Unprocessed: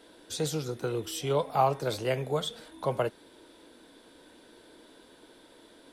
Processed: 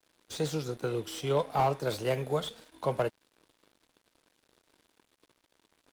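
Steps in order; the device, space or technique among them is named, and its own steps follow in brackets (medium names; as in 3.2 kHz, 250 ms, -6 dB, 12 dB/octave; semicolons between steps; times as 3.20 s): early transistor amplifier (crossover distortion -51 dBFS; slew-rate limiter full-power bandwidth 64 Hz); 1.87–2.36 s: treble shelf 9.4 kHz +5 dB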